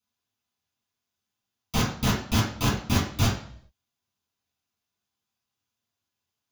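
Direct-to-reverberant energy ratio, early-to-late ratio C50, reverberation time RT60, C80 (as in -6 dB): -7.5 dB, 5.0 dB, 0.55 s, 9.5 dB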